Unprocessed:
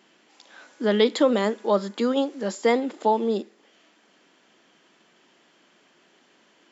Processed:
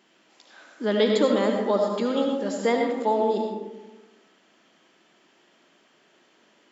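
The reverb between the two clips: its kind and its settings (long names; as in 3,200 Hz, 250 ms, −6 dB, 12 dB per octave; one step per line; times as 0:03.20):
comb and all-pass reverb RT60 1.2 s, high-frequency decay 0.5×, pre-delay 40 ms, DRR 1.5 dB
level −3 dB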